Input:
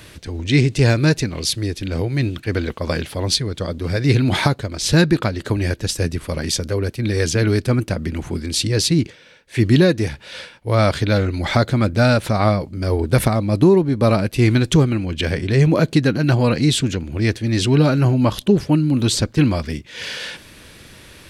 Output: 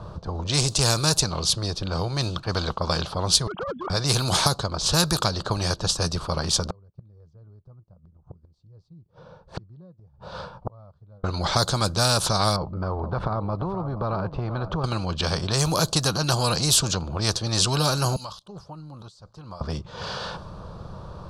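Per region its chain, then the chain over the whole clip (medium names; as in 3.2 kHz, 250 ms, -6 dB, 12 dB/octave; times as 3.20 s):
3.47–3.90 s: formants replaced by sine waves + hard clipper -21.5 dBFS
6.66–11.24 s: inverted gate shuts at -17 dBFS, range -42 dB + loudspeaker Doppler distortion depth 0.8 ms
12.56–14.84 s: low-pass 1.6 kHz + compression 5:1, threshold -19 dBFS + delay 475 ms -17 dB
18.16–19.61 s: transient shaper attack -3 dB, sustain +3 dB + pre-emphasis filter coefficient 0.97 + compression 12:1, threshold -37 dBFS
whole clip: level-controlled noise filter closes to 980 Hz, open at -11 dBFS; FFT filter 180 Hz 0 dB, 260 Hz -19 dB, 530 Hz -6 dB, 1.2 kHz 0 dB, 2 kHz -27 dB, 4.5 kHz +3 dB; spectrum-flattening compressor 2:1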